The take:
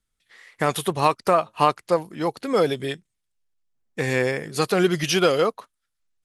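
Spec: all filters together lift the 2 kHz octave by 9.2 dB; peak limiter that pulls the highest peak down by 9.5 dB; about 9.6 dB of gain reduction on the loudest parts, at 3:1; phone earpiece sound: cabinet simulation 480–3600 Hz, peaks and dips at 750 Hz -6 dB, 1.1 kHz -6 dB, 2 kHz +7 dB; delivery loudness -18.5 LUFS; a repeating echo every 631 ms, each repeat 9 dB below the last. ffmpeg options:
-af "equalizer=f=2000:t=o:g=7.5,acompressor=threshold=0.0562:ratio=3,alimiter=limit=0.126:level=0:latency=1,highpass=480,equalizer=f=750:t=q:w=4:g=-6,equalizer=f=1100:t=q:w=4:g=-6,equalizer=f=2000:t=q:w=4:g=7,lowpass=f=3600:w=0.5412,lowpass=f=3600:w=1.3066,aecho=1:1:631|1262|1893|2524:0.355|0.124|0.0435|0.0152,volume=4.73"

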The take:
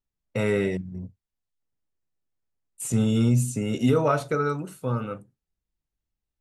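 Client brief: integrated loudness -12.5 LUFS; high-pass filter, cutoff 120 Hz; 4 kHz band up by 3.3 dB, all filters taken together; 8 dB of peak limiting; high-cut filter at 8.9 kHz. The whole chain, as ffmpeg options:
-af "highpass=120,lowpass=8900,equalizer=f=4000:t=o:g=4.5,volume=6.31,alimiter=limit=0.794:level=0:latency=1"

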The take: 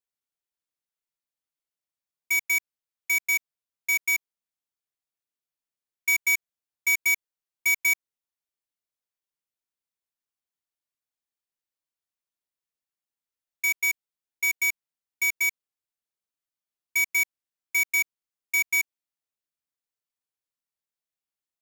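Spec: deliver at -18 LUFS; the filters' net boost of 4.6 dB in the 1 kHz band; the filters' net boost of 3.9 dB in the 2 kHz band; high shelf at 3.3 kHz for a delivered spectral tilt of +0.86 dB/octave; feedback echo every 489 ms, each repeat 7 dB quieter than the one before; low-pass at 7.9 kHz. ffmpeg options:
-af "lowpass=7900,equalizer=f=1000:t=o:g=4,equalizer=f=2000:t=o:g=5.5,highshelf=f=3300:g=-4.5,aecho=1:1:489|978|1467|1956|2445:0.447|0.201|0.0905|0.0407|0.0183,volume=1.58"

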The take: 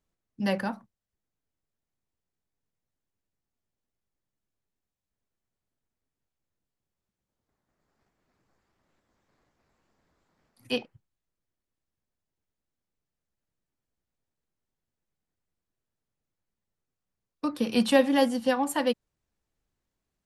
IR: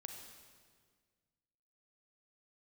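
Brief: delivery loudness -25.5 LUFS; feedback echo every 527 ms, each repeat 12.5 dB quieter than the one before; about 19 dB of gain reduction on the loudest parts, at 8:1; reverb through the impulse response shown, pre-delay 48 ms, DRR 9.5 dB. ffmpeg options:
-filter_complex "[0:a]acompressor=threshold=0.0178:ratio=8,aecho=1:1:527|1054|1581:0.237|0.0569|0.0137,asplit=2[s0][s1];[1:a]atrim=start_sample=2205,adelay=48[s2];[s1][s2]afir=irnorm=-1:irlink=0,volume=0.531[s3];[s0][s3]amix=inputs=2:normalize=0,volume=5.96"

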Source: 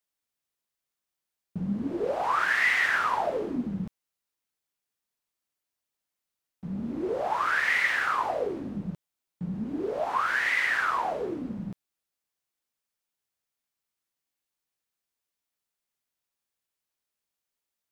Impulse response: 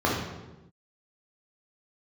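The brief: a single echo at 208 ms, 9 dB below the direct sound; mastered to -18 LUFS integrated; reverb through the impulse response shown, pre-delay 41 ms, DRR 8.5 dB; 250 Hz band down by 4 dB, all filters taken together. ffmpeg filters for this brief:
-filter_complex "[0:a]equalizer=f=250:t=o:g=-5.5,aecho=1:1:208:0.355,asplit=2[s0][s1];[1:a]atrim=start_sample=2205,adelay=41[s2];[s1][s2]afir=irnorm=-1:irlink=0,volume=0.0631[s3];[s0][s3]amix=inputs=2:normalize=0,volume=2.66"

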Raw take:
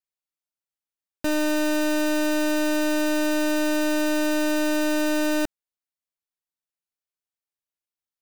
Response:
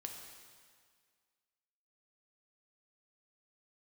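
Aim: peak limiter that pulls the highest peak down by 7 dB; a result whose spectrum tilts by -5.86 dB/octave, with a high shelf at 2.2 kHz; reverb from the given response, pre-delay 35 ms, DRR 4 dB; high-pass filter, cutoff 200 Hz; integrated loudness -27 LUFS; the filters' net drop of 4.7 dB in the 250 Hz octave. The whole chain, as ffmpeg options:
-filter_complex "[0:a]highpass=200,equalizer=f=250:t=o:g=-5,highshelf=f=2200:g=-7,alimiter=level_in=1.33:limit=0.0631:level=0:latency=1,volume=0.75,asplit=2[s0][s1];[1:a]atrim=start_sample=2205,adelay=35[s2];[s1][s2]afir=irnorm=-1:irlink=0,volume=0.891[s3];[s0][s3]amix=inputs=2:normalize=0,volume=2.66"

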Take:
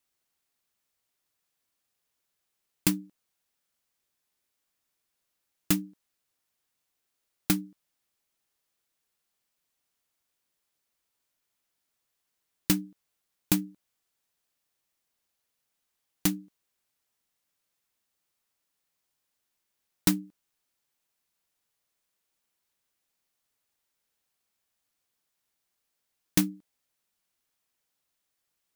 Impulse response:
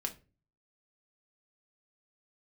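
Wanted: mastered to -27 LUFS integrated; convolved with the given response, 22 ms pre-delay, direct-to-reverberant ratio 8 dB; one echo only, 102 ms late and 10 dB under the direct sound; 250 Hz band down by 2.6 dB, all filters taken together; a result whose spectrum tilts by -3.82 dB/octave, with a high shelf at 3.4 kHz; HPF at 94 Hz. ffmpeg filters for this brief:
-filter_complex "[0:a]highpass=94,equalizer=f=250:t=o:g=-3.5,highshelf=f=3400:g=-7,aecho=1:1:102:0.316,asplit=2[s0][s1];[1:a]atrim=start_sample=2205,adelay=22[s2];[s1][s2]afir=irnorm=-1:irlink=0,volume=0.376[s3];[s0][s3]amix=inputs=2:normalize=0,volume=2.11"

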